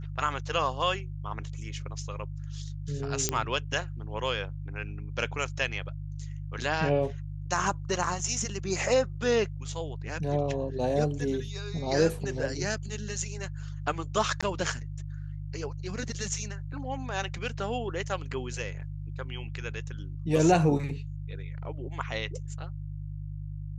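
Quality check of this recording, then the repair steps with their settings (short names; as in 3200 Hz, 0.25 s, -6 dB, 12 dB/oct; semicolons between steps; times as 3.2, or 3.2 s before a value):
hum 50 Hz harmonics 3 -37 dBFS
3.29 pop -10 dBFS
14.41–14.43 gap 16 ms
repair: de-click; de-hum 50 Hz, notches 3; interpolate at 14.41, 16 ms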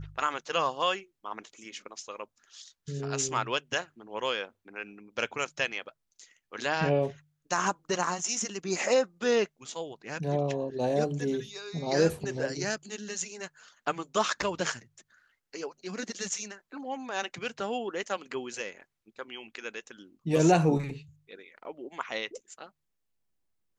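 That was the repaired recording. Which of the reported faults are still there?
3.29 pop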